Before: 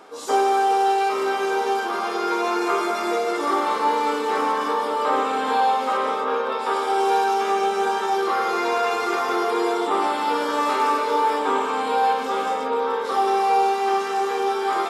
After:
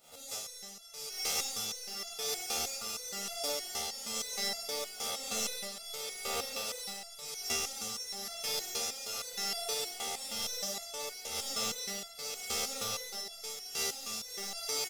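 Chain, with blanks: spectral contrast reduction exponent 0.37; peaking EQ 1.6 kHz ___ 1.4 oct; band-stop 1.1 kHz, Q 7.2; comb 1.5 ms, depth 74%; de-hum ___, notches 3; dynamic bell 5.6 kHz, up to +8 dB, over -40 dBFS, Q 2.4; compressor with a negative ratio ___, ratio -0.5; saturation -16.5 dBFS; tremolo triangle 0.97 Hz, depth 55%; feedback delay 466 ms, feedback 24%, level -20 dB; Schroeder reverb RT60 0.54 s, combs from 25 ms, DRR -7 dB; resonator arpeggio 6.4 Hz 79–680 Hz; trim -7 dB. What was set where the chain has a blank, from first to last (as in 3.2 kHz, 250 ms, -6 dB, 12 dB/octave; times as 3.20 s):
-9.5 dB, 46.49 Hz, -22 dBFS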